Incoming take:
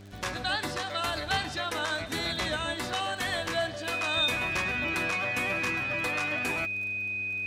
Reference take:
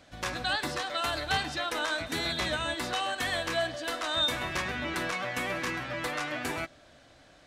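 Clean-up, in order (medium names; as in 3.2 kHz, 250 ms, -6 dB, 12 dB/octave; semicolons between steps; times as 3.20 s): de-click; de-hum 99.6 Hz, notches 4; band-stop 2.5 kHz, Q 30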